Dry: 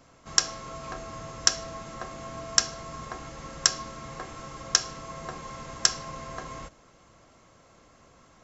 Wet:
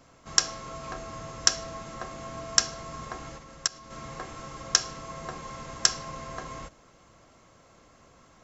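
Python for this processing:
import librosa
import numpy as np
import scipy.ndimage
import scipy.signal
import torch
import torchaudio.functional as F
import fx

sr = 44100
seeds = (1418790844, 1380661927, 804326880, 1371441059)

y = fx.level_steps(x, sr, step_db=24, at=(3.37, 3.9), fade=0.02)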